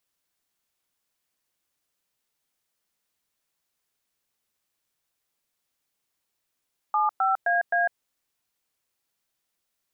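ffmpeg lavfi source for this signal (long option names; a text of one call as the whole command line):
ffmpeg -f lavfi -i "aevalsrc='0.075*clip(min(mod(t,0.261),0.152-mod(t,0.261))/0.002,0,1)*(eq(floor(t/0.261),0)*(sin(2*PI*852*mod(t,0.261))+sin(2*PI*1209*mod(t,0.261)))+eq(floor(t/0.261),1)*(sin(2*PI*770*mod(t,0.261))+sin(2*PI*1336*mod(t,0.261)))+eq(floor(t/0.261),2)*(sin(2*PI*697*mod(t,0.261))+sin(2*PI*1633*mod(t,0.261)))+eq(floor(t/0.261),3)*(sin(2*PI*697*mod(t,0.261))+sin(2*PI*1633*mod(t,0.261))))':duration=1.044:sample_rate=44100" out.wav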